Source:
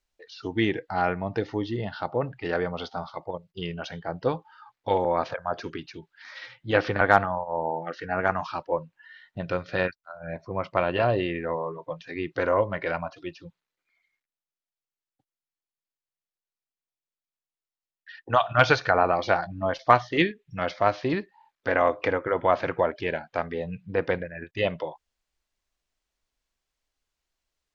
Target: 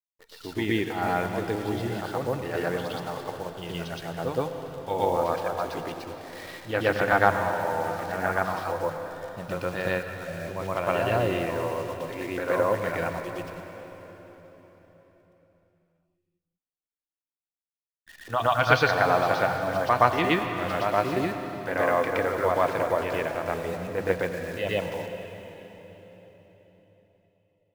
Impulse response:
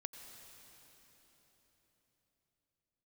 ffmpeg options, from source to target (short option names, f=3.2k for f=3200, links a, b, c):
-filter_complex "[0:a]acrusher=bits=8:dc=4:mix=0:aa=0.000001,asplit=2[a][b];[1:a]atrim=start_sample=2205,adelay=119[c];[b][c]afir=irnorm=-1:irlink=0,volume=8dB[d];[a][d]amix=inputs=2:normalize=0,volume=-6dB"